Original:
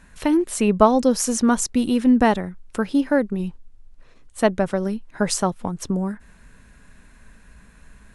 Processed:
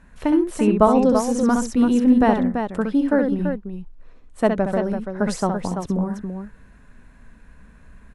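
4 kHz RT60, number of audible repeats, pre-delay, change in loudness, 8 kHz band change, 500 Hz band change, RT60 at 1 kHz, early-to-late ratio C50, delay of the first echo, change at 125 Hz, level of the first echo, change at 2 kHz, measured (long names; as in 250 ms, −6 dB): no reverb audible, 2, no reverb audible, +1.0 dB, −8.5 dB, +1.0 dB, no reverb audible, no reverb audible, 66 ms, +1.5 dB, −6.0 dB, −2.0 dB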